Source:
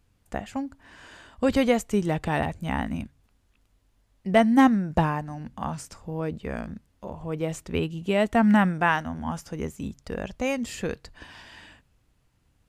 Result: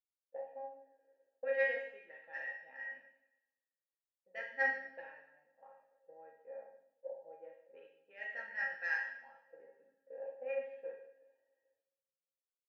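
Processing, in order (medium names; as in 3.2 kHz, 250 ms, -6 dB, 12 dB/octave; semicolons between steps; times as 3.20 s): peaking EQ 910 Hz +12 dB 0.22 oct; auto-wah 450–1700 Hz, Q 2.8, up, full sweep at -20 dBFS; vowel filter e; saturation -28.5 dBFS, distortion -24 dB; distance through air 50 m; feedback comb 270 Hz, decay 0.28 s, harmonics all, mix 90%; two-slope reverb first 0.95 s, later 2.9 s, DRR -1 dB; three bands expanded up and down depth 70%; trim +10 dB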